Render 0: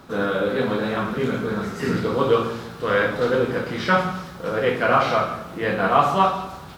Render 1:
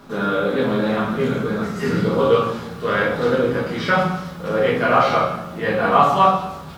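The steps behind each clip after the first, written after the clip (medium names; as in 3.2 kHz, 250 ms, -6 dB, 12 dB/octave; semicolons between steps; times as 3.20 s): reverberation RT60 0.35 s, pre-delay 5 ms, DRR 0.5 dB; trim -1 dB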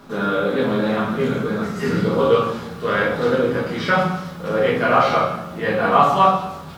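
hum notches 60/120 Hz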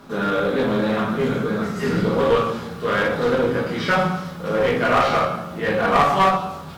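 one-sided clip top -17 dBFS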